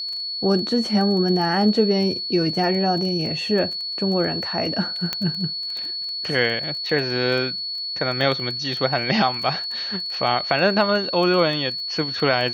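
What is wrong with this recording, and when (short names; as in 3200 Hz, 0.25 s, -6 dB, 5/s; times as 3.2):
crackle 12/s -27 dBFS
tone 4400 Hz -26 dBFS
5.13 pop -8 dBFS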